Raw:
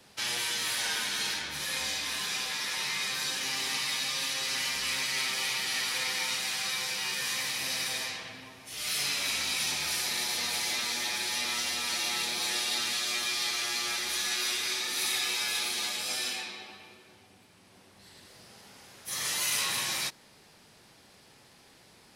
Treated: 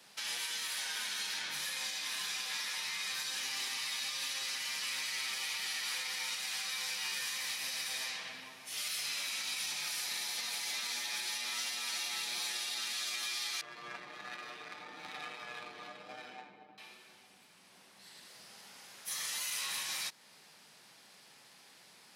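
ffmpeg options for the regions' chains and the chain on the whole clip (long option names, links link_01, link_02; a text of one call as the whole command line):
ffmpeg -i in.wav -filter_complex "[0:a]asettb=1/sr,asplit=3[link_01][link_02][link_03];[link_01]atrim=end=13.614[link_04];[link_02]atrim=start=13.61:end=16.78,asetpts=PTS-STARTPTS,afade=type=in:duration=0.004:curve=qsin,afade=type=out:start_time=3.166:duration=0.004:curve=qsin,aecho=1:1:6.6:0.96,atrim=end_sample=139797,adynamicsmooth=sensitivity=1:basefreq=570[link_05];[link_03]atrim=start=16.776[link_06];[link_04][link_05]acrossfade=duration=0.004:curve1=hsin:curve2=qsin[link_07];[link_07][link_06]acrossfade=duration=0.004:curve1=qsin:curve2=hsin,highpass=frequency=160:width=0.5412,highpass=frequency=160:width=1.3066,alimiter=level_in=3.5dB:limit=-24dB:level=0:latency=1:release=259,volume=-3.5dB,equalizer=frequency=310:width=0.61:gain=-9" out.wav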